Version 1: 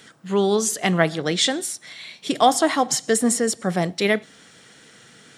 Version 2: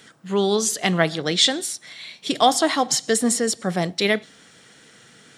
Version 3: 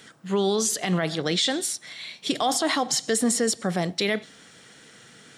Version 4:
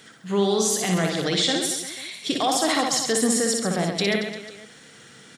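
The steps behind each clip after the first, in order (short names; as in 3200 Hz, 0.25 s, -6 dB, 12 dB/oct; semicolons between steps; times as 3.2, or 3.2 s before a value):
dynamic EQ 4100 Hz, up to +6 dB, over -40 dBFS, Q 1.3; gain -1 dB
limiter -13.5 dBFS, peak gain reduction 11.5 dB
reverse bouncing-ball echo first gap 60 ms, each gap 1.25×, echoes 5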